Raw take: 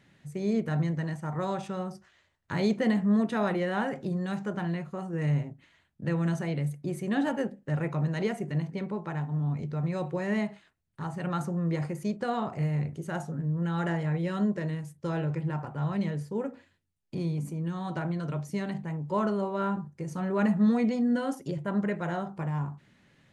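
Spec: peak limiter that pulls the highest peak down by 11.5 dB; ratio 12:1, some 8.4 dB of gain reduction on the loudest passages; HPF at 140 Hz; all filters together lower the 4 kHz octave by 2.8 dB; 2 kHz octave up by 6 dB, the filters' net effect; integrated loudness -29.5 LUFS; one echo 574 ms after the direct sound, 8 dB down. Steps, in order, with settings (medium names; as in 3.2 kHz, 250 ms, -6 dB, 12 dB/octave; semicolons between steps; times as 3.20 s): high-pass 140 Hz; peaking EQ 2 kHz +9 dB; peaking EQ 4 kHz -8.5 dB; compression 12:1, threshold -29 dBFS; peak limiter -31 dBFS; delay 574 ms -8 dB; trim +10 dB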